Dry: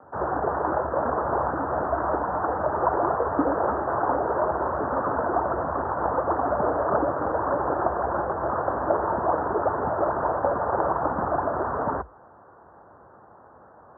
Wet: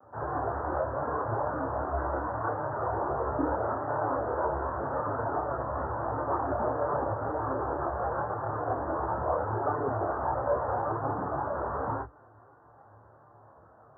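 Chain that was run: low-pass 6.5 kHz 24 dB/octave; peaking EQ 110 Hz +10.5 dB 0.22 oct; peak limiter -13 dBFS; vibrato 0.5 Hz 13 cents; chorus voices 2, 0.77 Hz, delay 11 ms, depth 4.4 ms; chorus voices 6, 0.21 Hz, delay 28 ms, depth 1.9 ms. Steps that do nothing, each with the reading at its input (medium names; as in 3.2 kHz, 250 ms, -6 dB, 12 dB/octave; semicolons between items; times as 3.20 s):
low-pass 6.5 kHz: input has nothing above 1.8 kHz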